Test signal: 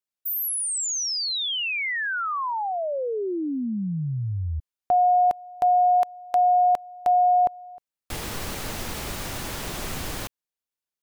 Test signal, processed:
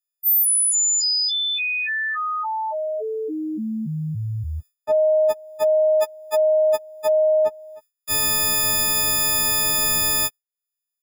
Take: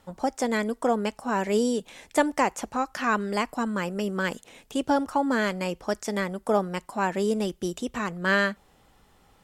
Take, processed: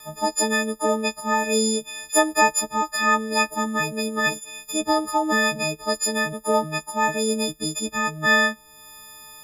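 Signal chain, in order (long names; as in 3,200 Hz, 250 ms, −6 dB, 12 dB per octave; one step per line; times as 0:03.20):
every partial snapped to a pitch grid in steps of 6 semitones
noise gate with hold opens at −46 dBFS, closes at −49 dBFS, hold 29 ms, range −21 dB
one half of a high-frequency compander encoder only
level +1 dB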